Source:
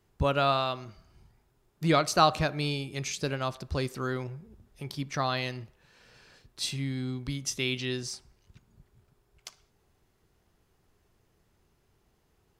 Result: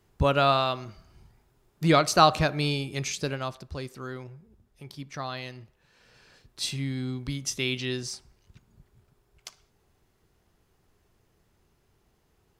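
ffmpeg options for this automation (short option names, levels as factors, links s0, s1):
-af "volume=3.35,afade=t=out:st=2.96:d=0.77:silence=0.354813,afade=t=in:st=5.55:d=1.09:silence=0.446684"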